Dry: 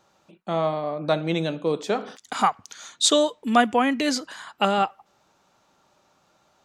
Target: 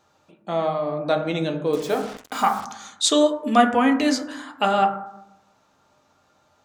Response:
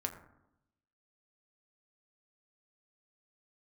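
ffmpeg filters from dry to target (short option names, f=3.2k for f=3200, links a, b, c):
-filter_complex "[1:a]atrim=start_sample=2205[a];[0:a][a]afir=irnorm=-1:irlink=0,asettb=1/sr,asplit=3[b][c][d];[b]atrim=end=1.734[e];[c]atrim=start=1.73:end=2.65,asetpts=PTS-STARTPTS,afade=t=in:d=0.004:c=qsin,afade=t=out:st=0.916:d=0.004:c=qsin,acrusher=bits=5:mix=0:aa=0.5[f];[d]atrim=start=2.646[g];[e][f]acrossfade=d=0.004:c1=hsin:c2=qsin[h];[h][g]acrossfade=d=0.004:c1=qsin:c2=hsin"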